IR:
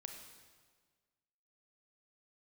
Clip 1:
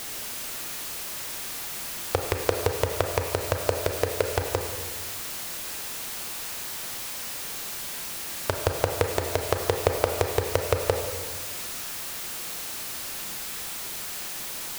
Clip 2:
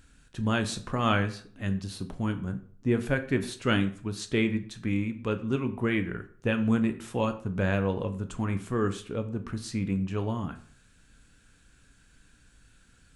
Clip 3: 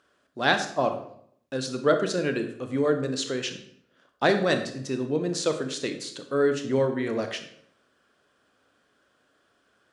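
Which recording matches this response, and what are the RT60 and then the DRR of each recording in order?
1; 1.6 s, 0.50 s, 0.70 s; 3.5 dB, 8.0 dB, 6.5 dB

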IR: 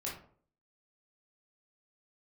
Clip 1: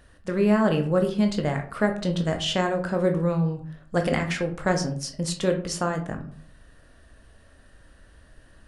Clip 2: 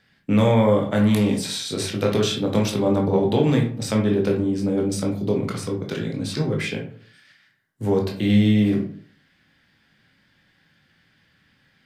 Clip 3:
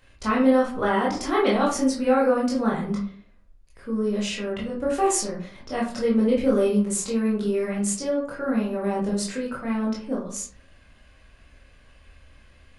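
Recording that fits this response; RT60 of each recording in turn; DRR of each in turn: 3; 0.50 s, 0.50 s, 0.50 s; 4.0 dB, 0.0 dB, -5.0 dB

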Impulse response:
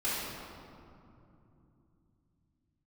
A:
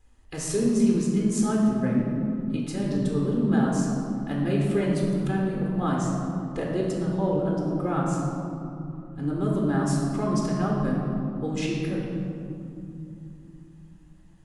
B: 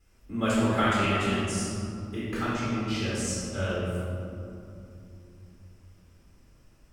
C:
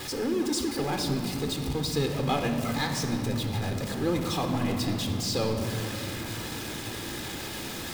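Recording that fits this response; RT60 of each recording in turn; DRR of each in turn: B; 2.8 s, 2.8 s, 2.8 s; -3.0 dB, -10.0 dB, 4.0 dB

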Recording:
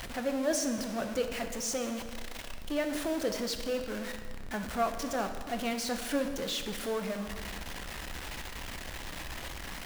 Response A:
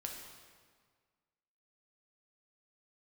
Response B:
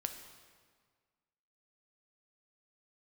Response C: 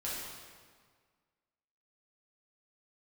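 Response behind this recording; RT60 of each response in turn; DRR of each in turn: B; 1.7 s, 1.7 s, 1.7 s; 0.5 dB, 6.0 dB, -8.0 dB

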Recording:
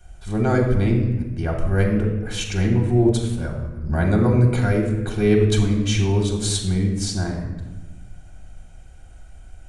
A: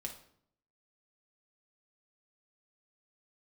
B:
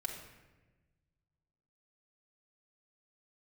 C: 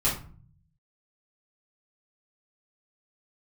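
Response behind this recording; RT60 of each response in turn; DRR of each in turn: B; 0.65 s, 1.2 s, 0.45 s; 1.0 dB, -1.0 dB, -9.0 dB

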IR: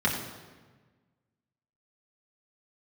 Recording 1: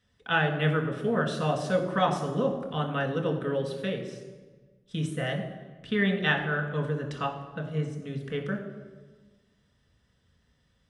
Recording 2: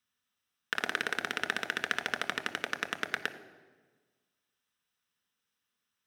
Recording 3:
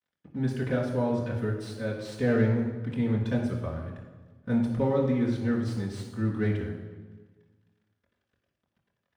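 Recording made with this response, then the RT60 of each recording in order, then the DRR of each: 3; 1.4 s, 1.4 s, 1.4 s; 0.5 dB, 8.0 dB, -5.0 dB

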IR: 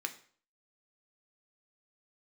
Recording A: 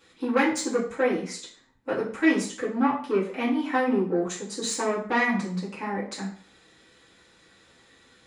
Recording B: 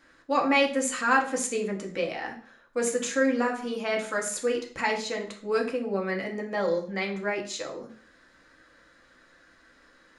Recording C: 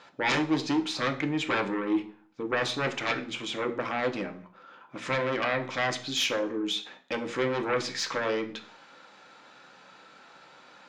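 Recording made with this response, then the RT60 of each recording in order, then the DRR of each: C; 0.50 s, 0.50 s, 0.50 s; -8.5 dB, 0.0 dB, 5.0 dB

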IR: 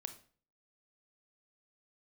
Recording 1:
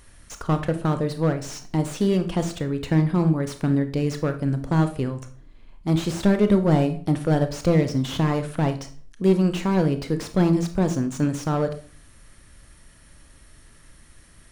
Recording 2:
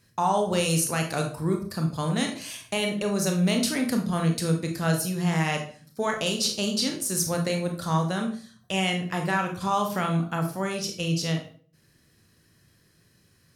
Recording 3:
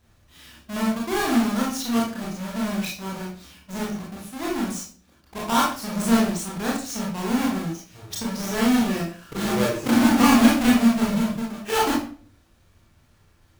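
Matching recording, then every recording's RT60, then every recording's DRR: 1; 0.45 s, 0.45 s, 0.45 s; 8.0 dB, 2.5 dB, -4.5 dB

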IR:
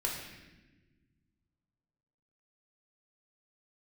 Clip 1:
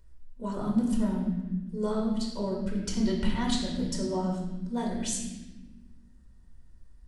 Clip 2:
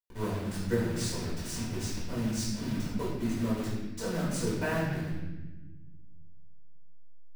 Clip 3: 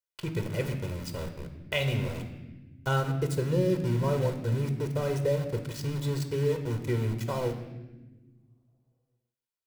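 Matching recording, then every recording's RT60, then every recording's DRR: 1; no single decay rate, no single decay rate, no single decay rate; -2.5 dB, -9.0 dB, 5.5 dB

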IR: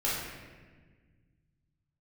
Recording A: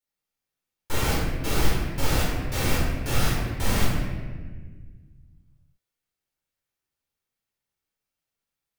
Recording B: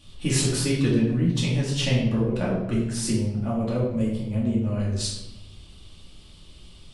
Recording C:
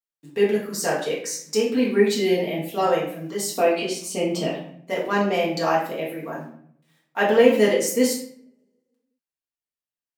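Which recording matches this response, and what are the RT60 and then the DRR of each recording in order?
A; 1.5 s, 0.90 s, 0.60 s; -7.5 dB, -6.5 dB, -5.5 dB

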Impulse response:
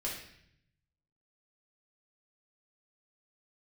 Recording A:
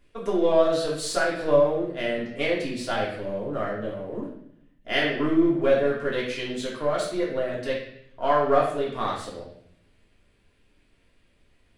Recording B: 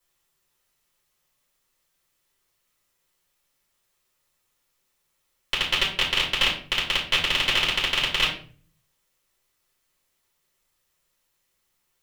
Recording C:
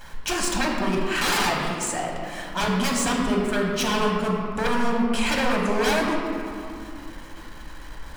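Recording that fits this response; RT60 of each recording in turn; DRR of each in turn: A; 0.70 s, 0.45 s, 2.6 s; -5.5 dB, -7.0 dB, -1.0 dB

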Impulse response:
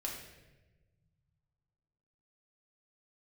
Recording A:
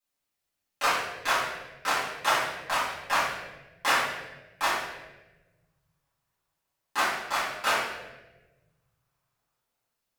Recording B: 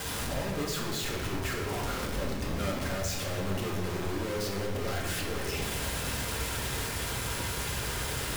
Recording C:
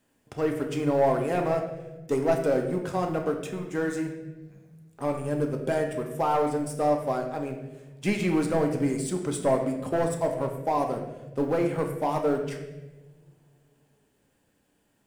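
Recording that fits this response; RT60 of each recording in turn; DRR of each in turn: B; 1.1 s, 1.2 s, 1.2 s; -11.0 dB, -2.0 dB, 2.5 dB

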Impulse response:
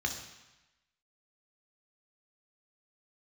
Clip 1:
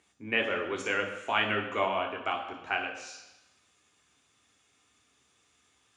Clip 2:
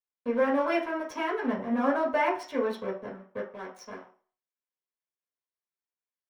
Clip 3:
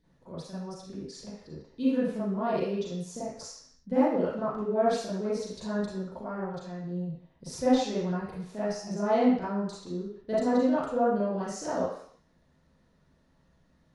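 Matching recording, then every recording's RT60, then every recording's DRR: 1; 1.0 s, 0.40 s, no single decay rate; 2.0 dB, -4.5 dB, -12.0 dB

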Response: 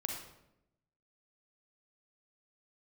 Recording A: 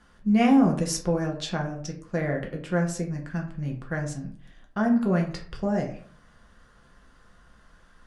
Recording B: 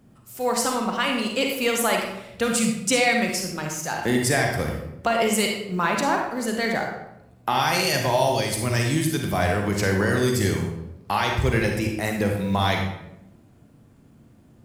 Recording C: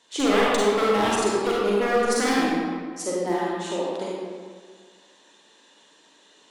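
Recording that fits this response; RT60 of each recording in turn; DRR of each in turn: B; 0.50 s, 0.85 s, 1.9 s; 0.5 dB, 1.0 dB, -6.0 dB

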